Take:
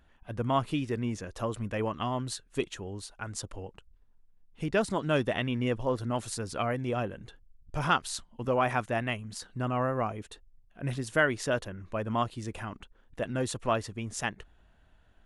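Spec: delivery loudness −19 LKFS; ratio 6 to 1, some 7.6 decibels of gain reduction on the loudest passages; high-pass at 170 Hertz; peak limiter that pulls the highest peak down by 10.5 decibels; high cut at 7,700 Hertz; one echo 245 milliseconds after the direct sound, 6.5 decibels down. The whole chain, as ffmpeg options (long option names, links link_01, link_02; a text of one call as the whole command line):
ffmpeg -i in.wav -af "highpass=170,lowpass=7700,acompressor=threshold=-29dB:ratio=6,alimiter=level_in=2dB:limit=-24dB:level=0:latency=1,volume=-2dB,aecho=1:1:245:0.473,volume=19.5dB" out.wav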